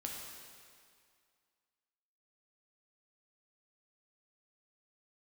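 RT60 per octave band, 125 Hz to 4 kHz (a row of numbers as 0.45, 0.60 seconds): 1.9, 2.0, 2.1, 2.2, 2.1, 2.0 seconds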